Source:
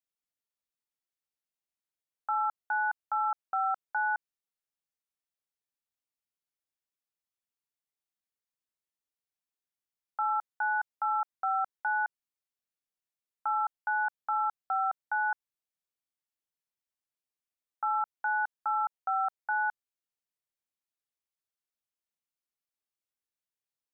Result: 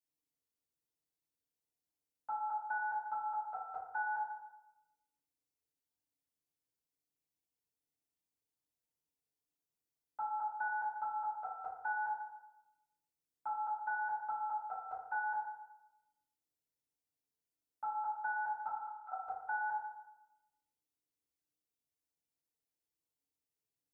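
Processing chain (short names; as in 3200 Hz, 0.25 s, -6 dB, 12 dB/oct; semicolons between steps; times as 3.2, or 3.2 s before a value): 18.67–19.12 ladder high-pass 910 Hz, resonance 35%; bell 1400 Hz -13 dB 1.8 oct; FDN reverb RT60 0.97 s, low-frequency decay 0.85×, high-frequency decay 0.3×, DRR -9.5 dB; gain -5.5 dB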